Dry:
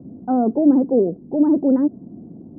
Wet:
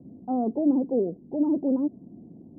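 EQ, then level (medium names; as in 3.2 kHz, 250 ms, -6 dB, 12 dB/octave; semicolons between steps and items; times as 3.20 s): steep low-pass 1.1 kHz 36 dB/octave; -8.0 dB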